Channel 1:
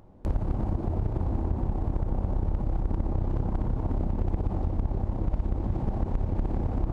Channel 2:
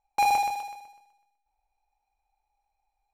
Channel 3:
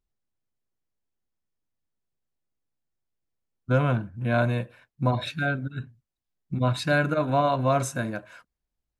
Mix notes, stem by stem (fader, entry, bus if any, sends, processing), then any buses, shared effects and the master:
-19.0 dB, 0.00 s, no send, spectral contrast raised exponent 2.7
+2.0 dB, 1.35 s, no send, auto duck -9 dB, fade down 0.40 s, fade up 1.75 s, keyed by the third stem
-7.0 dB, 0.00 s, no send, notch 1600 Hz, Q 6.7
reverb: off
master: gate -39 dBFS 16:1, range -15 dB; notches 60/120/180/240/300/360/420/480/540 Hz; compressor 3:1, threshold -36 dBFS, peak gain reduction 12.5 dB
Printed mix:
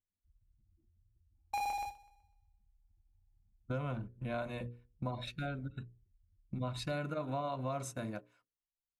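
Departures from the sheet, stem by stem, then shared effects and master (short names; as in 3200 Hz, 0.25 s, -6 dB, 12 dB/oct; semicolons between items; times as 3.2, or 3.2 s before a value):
stem 1 -19.0 dB -> -28.0 dB; stem 2 +2.0 dB -> -8.5 dB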